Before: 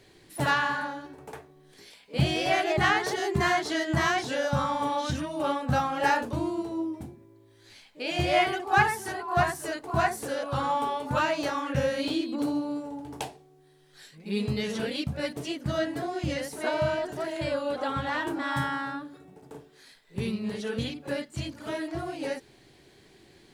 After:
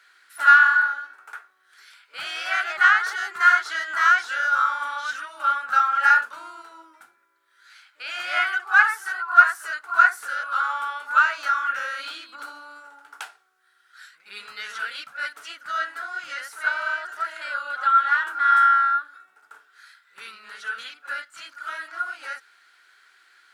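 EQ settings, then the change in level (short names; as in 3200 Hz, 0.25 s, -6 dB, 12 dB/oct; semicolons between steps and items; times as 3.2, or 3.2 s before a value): resonant high-pass 1400 Hz, resonance Q 14; -2.0 dB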